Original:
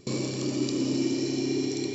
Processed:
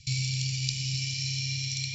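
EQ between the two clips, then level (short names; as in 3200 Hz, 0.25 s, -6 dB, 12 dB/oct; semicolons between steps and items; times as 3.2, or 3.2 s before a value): Chebyshev band-stop 140–2300 Hz, order 4; LPF 6900 Hz 24 dB/oct; +6.5 dB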